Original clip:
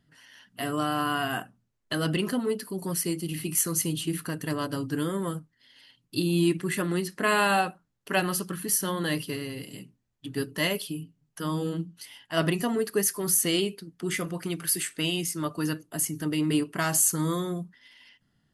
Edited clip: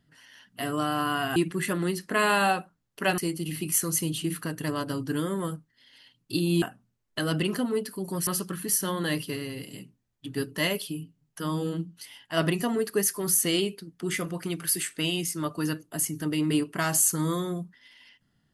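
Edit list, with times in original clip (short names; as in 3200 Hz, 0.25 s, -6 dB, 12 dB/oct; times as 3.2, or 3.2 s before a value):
1.36–3.01 swap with 6.45–8.27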